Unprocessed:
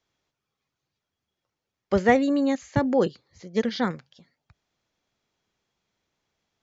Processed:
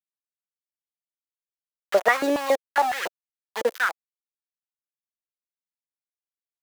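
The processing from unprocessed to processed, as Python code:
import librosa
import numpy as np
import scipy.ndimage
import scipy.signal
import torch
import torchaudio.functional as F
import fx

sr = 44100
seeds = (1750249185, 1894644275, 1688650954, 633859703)

y = np.where(np.abs(x) >= 10.0 ** (-25.5 / 20.0), x, 0.0)
y = fx.filter_held_highpass(y, sr, hz=7.2, low_hz=420.0, high_hz=1800.0)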